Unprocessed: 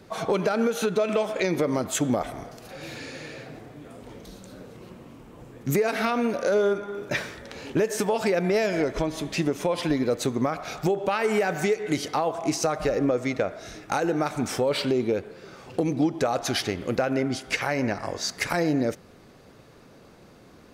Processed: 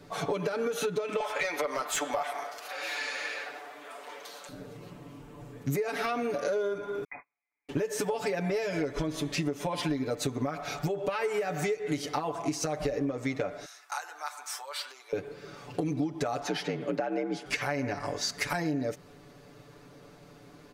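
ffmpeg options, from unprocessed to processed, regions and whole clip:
ffmpeg -i in.wav -filter_complex "[0:a]asettb=1/sr,asplit=3[link_01][link_02][link_03];[link_01]atrim=end=1.204[link_04];[link_02]atrim=start=1.2:end=4.49,asetpts=PTS-STARTPTS,afade=type=in:duration=0.004:curve=qsin,afade=type=out:start_time=3.286:duration=0.004:curve=qsin,highpass=750,highshelf=frequency=9600:gain=10.5,asplit=2[link_05][link_06];[link_06]highpass=frequency=720:poles=1,volume=17dB,asoftclip=type=tanh:threshold=-10.5dB[link_07];[link_05][link_07]amix=inputs=2:normalize=0,lowpass=frequency=1900:poles=1,volume=-6dB[link_08];[link_03]atrim=start=4.486[link_09];[link_04][link_08]acrossfade=duration=0.004:curve1=hsin:curve2=qsin[link_10];[link_10][link_09]acrossfade=duration=0.004:curve1=qsin:curve2=hsin,asettb=1/sr,asplit=3[link_11][link_12][link_13];[link_11]atrim=end=7.044[link_14];[link_12]atrim=start=7.04:end=7.69,asetpts=PTS-STARTPTS,afade=type=in:duration=0.004:curve=qsin,afade=type=out:start_time=0.646:duration=0.004:curve=qsin,agate=range=-48dB:threshold=-30dB:ratio=16:release=100:detection=peak,acompressor=threshold=-37dB:ratio=20:attack=3.2:release=140:knee=1:detection=peak,lowpass=frequency=2200:width_type=q:width=0.5098,lowpass=frequency=2200:width_type=q:width=0.6013,lowpass=frequency=2200:width_type=q:width=0.9,lowpass=frequency=2200:width_type=q:width=2.563,afreqshift=-2600[link_15];[link_13]atrim=start=7.686[link_16];[link_14][link_15]acrossfade=duration=0.004:curve1=hsin:curve2=qsin[link_17];[link_17][link_16]acrossfade=duration=0.004:curve1=qsin:curve2=hsin,asettb=1/sr,asplit=3[link_18][link_19][link_20];[link_18]atrim=end=13.654[link_21];[link_19]atrim=start=13.65:end=15.13,asetpts=PTS-STARTPTS,afade=type=in:duration=0.004:curve=qsin,afade=type=out:start_time=1.476:duration=0.004:curve=qsin,highpass=frequency=980:width=0.5412,highpass=frequency=980:width=1.3066,equalizer=frequency=2500:width=0.8:gain=-9[link_22];[link_20]atrim=start=15.126[link_23];[link_21][link_22]acrossfade=duration=0.004:curve1=hsin:curve2=qsin[link_24];[link_24][link_23]acrossfade=duration=0.004:curve1=qsin:curve2=hsin,asettb=1/sr,asplit=3[link_25][link_26][link_27];[link_25]atrim=end=16.434[link_28];[link_26]atrim=start=16.43:end=17.46,asetpts=PTS-STARTPTS,afade=type=in:duration=0.004:curve=qsin,afade=type=out:start_time=1.026:duration=0.004:curve=qsin,lowpass=frequency=2600:poles=1,afreqshift=60[link_29];[link_27]atrim=start=17.456[link_30];[link_28][link_29]acrossfade=duration=0.004:curve1=hsin:curve2=qsin[link_31];[link_31][link_30]acrossfade=duration=0.004:curve1=qsin:curve2=hsin,aecho=1:1:6.9:0.97,acompressor=threshold=-23dB:ratio=6,volume=-4dB" out.wav

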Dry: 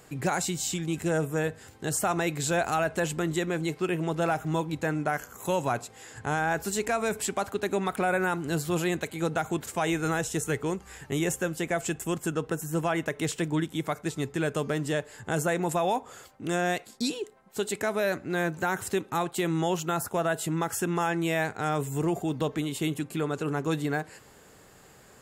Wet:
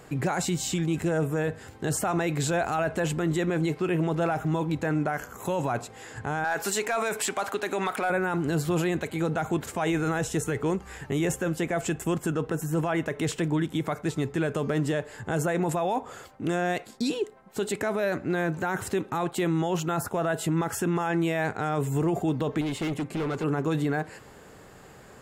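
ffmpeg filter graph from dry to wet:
ffmpeg -i in.wav -filter_complex "[0:a]asettb=1/sr,asplit=3[link_01][link_02][link_03];[link_01]atrim=end=6.444[link_04];[link_02]atrim=start=6.44:end=8.1,asetpts=PTS-STARTPTS,afade=type=in:duration=0.004:curve=qsin,afade=type=out:start_time=1.656:duration=0.004:curve=qsin,highpass=frequency=930:poles=1,acontrast=63,aeval=exprs='clip(val(0),-1,0.158)':channel_layout=same[link_05];[link_03]atrim=start=8.096[link_06];[link_04][link_05]acrossfade=duration=0.004:curve1=hsin:curve2=qsin[link_07];[link_07][link_06]acrossfade=duration=0.004:curve1=qsin:curve2=hsin,asettb=1/sr,asplit=3[link_08][link_09][link_10];[link_08]atrim=end=22.614[link_11];[link_09]atrim=start=22.61:end=23.44,asetpts=PTS-STARTPTS,afade=type=in:duration=0.004:curve=qsin,afade=type=out:start_time=0.826:duration=0.004:curve=qsin,acrossover=split=9000[link_12][link_13];[link_13]acompressor=threshold=-56dB:ratio=4:attack=1:release=60[link_14];[link_12][link_14]amix=inputs=2:normalize=0,equalizer=frequency=2100:width_type=o:width=0.21:gain=6.5,asoftclip=type=hard:threshold=-32dB[link_15];[link_10]atrim=start=23.436[link_16];[link_11][link_15]acrossfade=duration=0.004:curve1=hsin:curve2=qsin[link_17];[link_17][link_16]acrossfade=duration=0.004:curve1=qsin:curve2=hsin,highshelf=frequency=3400:gain=-8.5,alimiter=level_in=0.5dB:limit=-24dB:level=0:latency=1:release=17,volume=-0.5dB,volume=6dB" out.wav

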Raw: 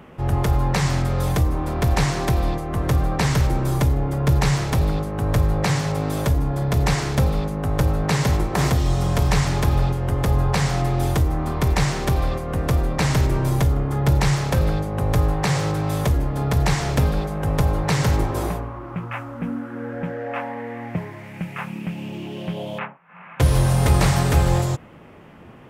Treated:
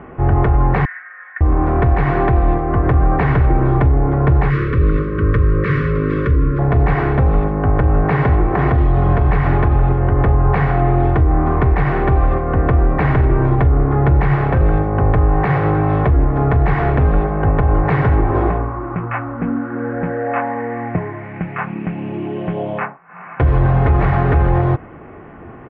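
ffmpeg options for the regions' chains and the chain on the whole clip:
ffmpeg -i in.wav -filter_complex "[0:a]asettb=1/sr,asplit=3[link_01][link_02][link_03];[link_01]atrim=end=0.854[link_04];[link_02]atrim=start=0.85:end=1.41,asetpts=PTS-STARTPTS,afade=type=in:duration=0.004:curve=qsin,afade=type=out:start_time=0.556:duration=0.004:curve=qsin,asuperpass=centerf=1800:order=4:qfactor=3.8,aecho=1:1:5.5:0.76,atrim=end_sample=24696[link_05];[link_03]atrim=start=1.406[link_06];[link_04][link_05]acrossfade=duration=0.004:curve1=hsin:curve2=qsin[link_07];[link_07][link_06]acrossfade=duration=0.004:curve1=qsin:curve2=hsin,asettb=1/sr,asplit=3[link_08][link_09][link_10];[link_08]atrim=end=4.504[link_11];[link_09]atrim=start=4.5:end=6.59,asetpts=PTS-STARTPTS,afade=type=in:duration=0.004:curve=qsin,afade=type=out:start_time=2.086:duration=0.004:curve=qsin,asuperstop=centerf=770:order=8:qfactor=1.4,bass=frequency=250:gain=-2,treble=frequency=4000:gain=4,aecho=1:1:455:0.2,atrim=end_sample=92169[link_12];[link_10]atrim=start=6.586[link_13];[link_11][link_12]acrossfade=duration=0.004:curve1=hsin:curve2=qsin[link_14];[link_14][link_13]acrossfade=duration=0.004:curve1=qsin:curve2=hsin,aecho=1:1:2.7:0.35,alimiter=limit=-13.5dB:level=0:latency=1:release=67,lowpass=frequency=2000:width=0.5412,lowpass=frequency=2000:width=1.3066,volume=8.5dB" out.wav

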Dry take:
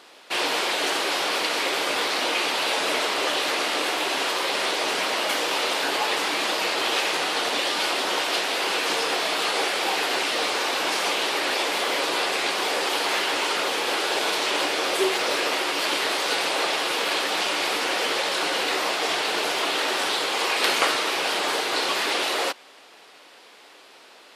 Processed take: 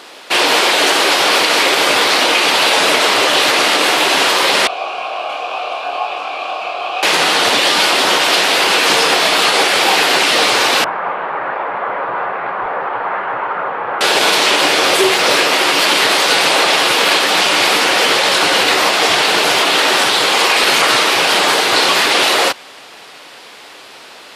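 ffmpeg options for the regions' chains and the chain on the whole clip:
ffmpeg -i in.wav -filter_complex "[0:a]asettb=1/sr,asplit=3[link_01][link_02][link_03];[link_01]atrim=end=4.674[link_04];[link_02]atrim=start=4.67:end=7.03,asetpts=PTS-STARTPTS,afade=type=in:duration=0.004:curve=qsin,afade=type=out:start_time=2.356:duration=0.004:curve=qsin,asplit=3[link_05][link_06][link_07];[link_05]bandpass=frequency=730:width_type=q:width=8,volume=0dB[link_08];[link_06]bandpass=frequency=1090:width_type=q:width=8,volume=-6dB[link_09];[link_07]bandpass=frequency=2440:width_type=q:width=8,volume=-9dB[link_10];[link_08][link_09][link_10]amix=inputs=3:normalize=0,asplit=2[link_11][link_12];[link_12]adelay=25,volume=-4dB[link_13];[link_11][link_13]amix=inputs=2:normalize=0,atrim=end_sample=104076[link_14];[link_03]atrim=start=7.026[link_15];[link_04][link_14]acrossfade=duration=0.004:curve1=hsin:curve2=qsin[link_16];[link_16][link_15]acrossfade=duration=0.004:curve1=qsin:curve2=hsin,asettb=1/sr,asplit=3[link_17][link_18][link_19];[link_17]atrim=end=10.844[link_20];[link_18]atrim=start=10.84:end=14.01,asetpts=PTS-STARTPTS,afade=type=in:duration=0.004:curve=qsin,afade=type=out:start_time=3.166:duration=0.004:curve=qsin,lowpass=frequency=1400:width=0.5412,lowpass=frequency=1400:width=1.3066,equalizer=frequency=290:width=0.78:gain=-13.5[link_21];[link_19]atrim=start=14.006[link_22];[link_20][link_21]acrossfade=duration=0.004:curve1=hsin:curve2=qsin[link_23];[link_23][link_22]acrossfade=duration=0.004:curve1=qsin:curve2=hsin,asubboost=boost=3:cutoff=160,alimiter=level_in=14dB:limit=-1dB:release=50:level=0:latency=1,volume=-1dB" out.wav

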